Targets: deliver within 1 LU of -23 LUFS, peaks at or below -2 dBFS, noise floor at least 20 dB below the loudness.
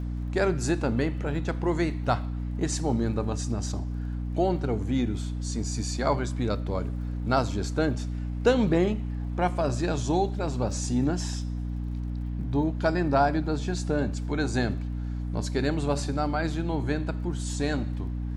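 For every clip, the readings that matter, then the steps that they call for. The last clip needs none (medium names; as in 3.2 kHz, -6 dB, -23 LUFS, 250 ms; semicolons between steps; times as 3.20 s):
tick rate 33 per s; hum 60 Hz; highest harmonic 300 Hz; hum level -29 dBFS; loudness -28.0 LUFS; peak level -9.5 dBFS; loudness target -23.0 LUFS
-> de-click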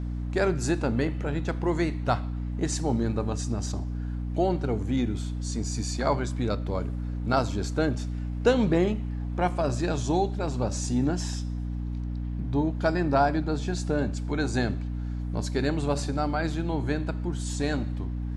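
tick rate 0 per s; hum 60 Hz; highest harmonic 300 Hz; hum level -29 dBFS
-> hum notches 60/120/180/240/300 Hz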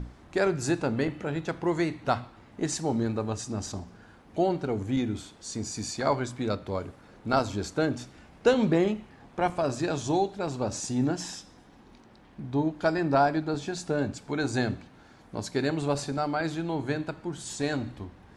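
hum not found; loudness -29.5 LUFS; peak level -10.0 dBFS; loudness target -23.0 LUFS
-> trim +6.5 dB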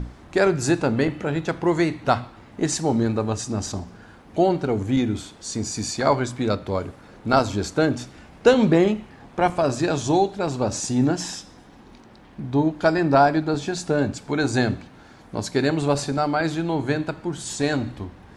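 loudness -23.0 LUFS; peak level -3.5 dBFS; noise floor -48 dBFS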